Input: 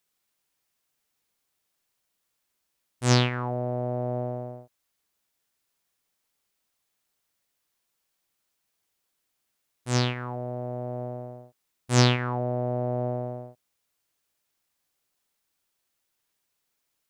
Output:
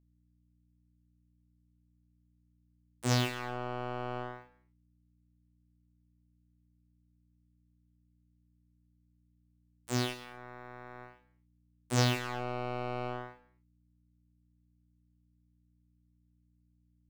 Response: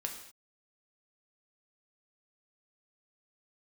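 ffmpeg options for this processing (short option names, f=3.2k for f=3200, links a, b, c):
-filter_complex "[0:a]acrusher=bits=3:mix=0:aa=0.5,aeval=exprs='val(0)+0.001*(sin(2*PI*60*n/s)+sin(2*PI*2*60*n/s)/2+sin(2*PI*3*60*n/s)/3+sin(2*PI*4*60*n/s)/4+sin(2*PI*5*60*n/s)/5)':c=same,asplit=2[a][b];[1:a]atrim=start_sample=2205,highshelf=f=7.8k:g=6,adelay=27[c];[b][c]afir=irnorm=-1:irlink=0,volume=-9.5dB[d];[a][d]amix=inputs=2:normalize=0,volume=-8dB"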